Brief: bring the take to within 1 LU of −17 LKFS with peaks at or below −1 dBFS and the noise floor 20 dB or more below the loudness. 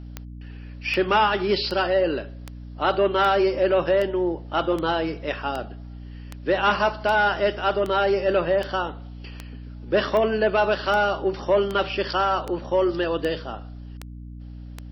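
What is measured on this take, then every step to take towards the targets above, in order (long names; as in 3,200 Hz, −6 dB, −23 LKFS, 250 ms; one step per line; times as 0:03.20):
number of clicks 20; mains hum 60 Hz; hum harmonics up to 300 Hz; level of the hum −35 dBFS; integrated loudness −23.0 LKFS; sample peak −9.0 dBFS; target loudness −17.0 LKFS
→ click removal
hum removal 60 Hz, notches 5
level +6 dB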